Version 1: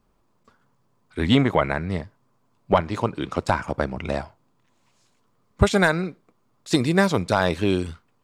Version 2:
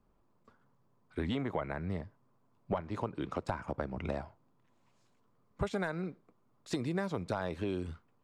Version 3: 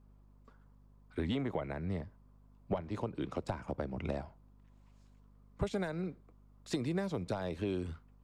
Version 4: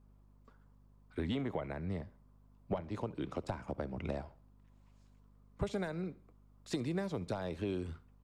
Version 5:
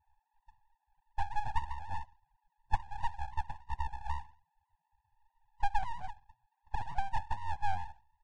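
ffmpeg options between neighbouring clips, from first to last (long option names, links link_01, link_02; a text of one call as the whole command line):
ffmpeg -i in.wav -filter_complex "[0:a]acrossover=split=320[link_01][link_02];[link_01]alimiter=limit=-19dB:level=0:latency=1[link_03];[link_03][link_02]amix=inputs=2:normalize=0,acompressor=threshold=-27dB:ratio=4,highshelf=frequency=2300:gain=-9.5,volume=-4.5dB" out.wav
ffmpeg -i in.wav -filter_complex "[0:a]acrossover=split=120|850|1900[link_01][link_02][link_03][link_04];[link_03]acompressor=threshold=-54dB:ratio=6[link_05];[link_01][link_02][link_05][link_04]amix=inputs=4:normalize=0,aeval=exprs='val(0)+0.001*(sin(2*PI*50*n/s)+sin(2*PI*2*50*n/s)/2+sin(2*PI*3*50*n/s)/3+sin(2*PI*4*50*n/s)/4+sin(2*PI*5*50*n/s)/5)':channel_layout=same" out.wav
ffmpeg -i in.wav -af "aecho=1:1:69|138|207:0.0794|0.0326|0.0134,volume=-1.5dB" out.wav
ffmpeg -i in.wav -af "asuperpass=centerf=440:order=8:qfactor=3.8,aeval=exprs='abs(val(0))':channel_layout=same,volume=14.5dB" -ar 22050 -c:a libvorbis -b:a 32k out.ogg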